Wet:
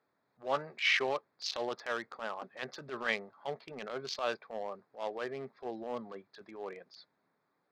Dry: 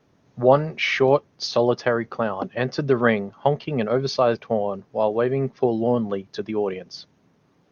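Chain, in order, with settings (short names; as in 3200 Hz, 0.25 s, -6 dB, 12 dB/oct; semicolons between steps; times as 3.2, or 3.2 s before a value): Wiener smoothing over 15 samples; band-pass 3700 Hz, Q 0.75; transient shaper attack -11 dB, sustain +1 dB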